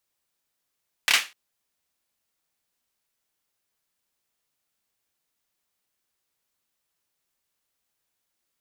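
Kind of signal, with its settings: hand clap length 0.25 s, bursts 3, apart 28 ms, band 2.4 kHz, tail 0.27 s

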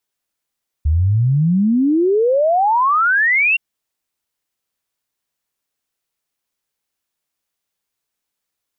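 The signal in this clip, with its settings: log sweep 72 Hz -> 2.8 kHz 2.72 s -11.5 dBFS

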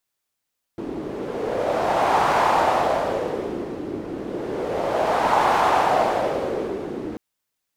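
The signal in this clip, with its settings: wind-like swept noise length 6.39 s, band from 330 Hz, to 860 Hz, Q 2.8, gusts 2, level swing 12.5 dB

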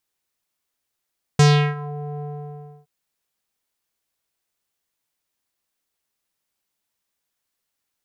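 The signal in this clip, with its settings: synth note square D3 12 dB/octave, low-pass 670 Hz, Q 2.3, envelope 3.5 oct, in 0.53 s, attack 5.1 ms, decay 0.35 s, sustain -20 dB, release 0.65 s, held 0.82 s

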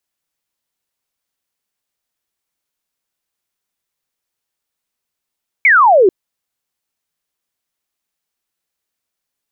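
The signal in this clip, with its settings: laser zap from 2.3 kHz, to 350 Hz, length 0.44 s sine, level -5.5 dB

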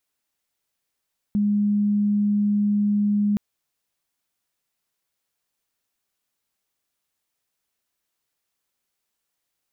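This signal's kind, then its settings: tone sine 206 Hz -17.5 dBFS 2.02 s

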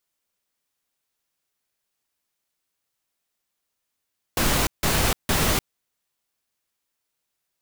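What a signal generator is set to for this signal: noise bursts pink, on 0.30 s, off 0.16 s, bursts 3, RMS -21 dBFS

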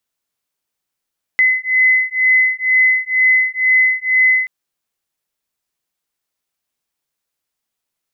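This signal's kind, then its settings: beating tones 2.03 kHz, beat 2.1 Hz, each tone -14 dBFS 3.08 s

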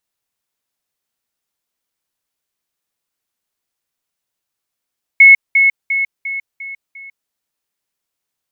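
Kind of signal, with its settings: level ladder 2.19 kHz -1.5 dBFS, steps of -6 dB, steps 6, 0.15 s 0.20 s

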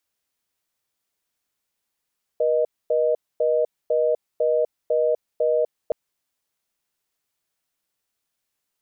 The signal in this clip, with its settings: call progress tone reorder tone, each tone -20 dBFS 3.52 s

